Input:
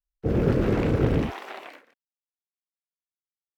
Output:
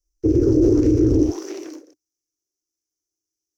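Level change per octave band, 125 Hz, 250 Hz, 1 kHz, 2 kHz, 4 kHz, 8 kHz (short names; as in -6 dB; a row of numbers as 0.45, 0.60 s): +2.0 dB, +9.5 dB, -9.5 dB, under -10 dB, -1.0 dB, n/a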